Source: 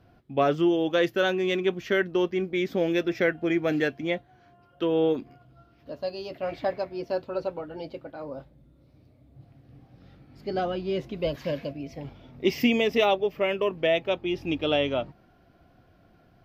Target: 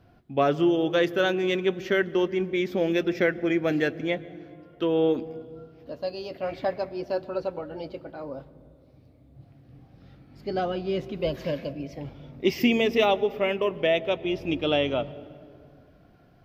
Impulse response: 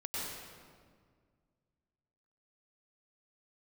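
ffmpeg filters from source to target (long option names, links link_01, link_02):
-filter_complex "[0:a]asplit=2[link_01][link_02];[link_02]lowshelf=frequency=430:gain=10.5[link_03];[1:a]atrim=start_sample=2205,asetrate=37044,aresample=44100[link_04];[link_03][link_04]afir=irnorm=-1:irlink=0,volume=-24dB[link_05];[link_01][link_05]amix=inputs=2:normalize=0"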